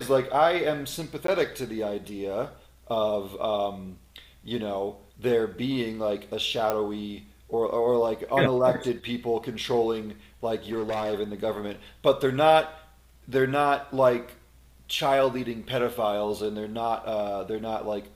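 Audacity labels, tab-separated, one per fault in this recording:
1.270000	1.280000	gap
6.700000	6.700000	pop -12 dBFS
10.710000	11.140000	clipped -25 dBFS

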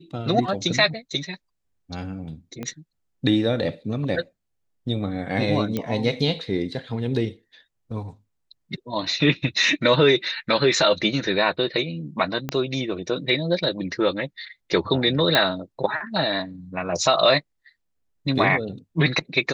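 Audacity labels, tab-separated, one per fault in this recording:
2.630000	2.630000	pop -18 dBFS
5.770000	5.770000	pop -12 dBFS
12.490000	12.490000	pop -12 dBFS
15.350000	15.350000	pop -4 dBFS

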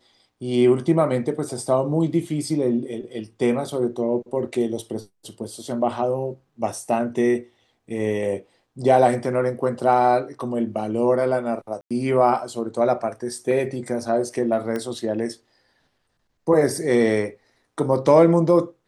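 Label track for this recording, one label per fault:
11.810000	11.910000	gap 96 ms
14.760000	14.760000	pop -16 dBFS

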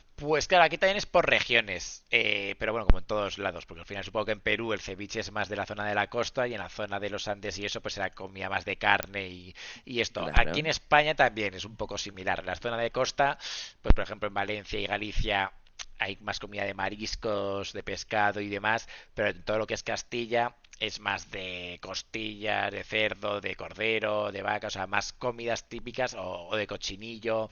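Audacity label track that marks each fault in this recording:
9.030000	9.030000	pop -11 dBFS

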